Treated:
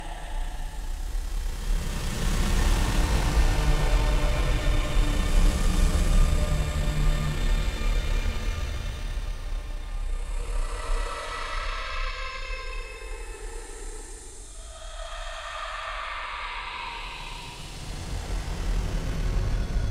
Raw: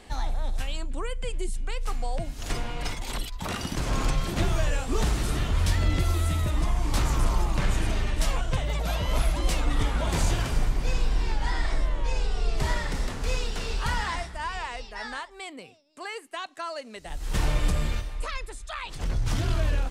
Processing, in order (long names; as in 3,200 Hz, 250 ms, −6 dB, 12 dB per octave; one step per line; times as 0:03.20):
extreme stretch with random phases 9.6×, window 0.25 s, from 0:17.10
four-comb reverb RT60 2.3 s, combs from 33 ms, DRR 6 dB
harmonic generator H 8 −32 dB, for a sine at −9 dBFS